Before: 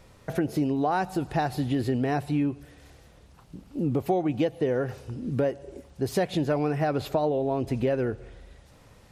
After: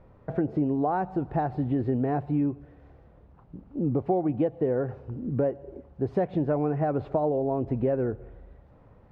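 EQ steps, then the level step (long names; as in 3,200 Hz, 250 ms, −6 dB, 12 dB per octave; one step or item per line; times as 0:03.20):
low-pass filter 1,100 Hz 12 dB per octave
0.0 dB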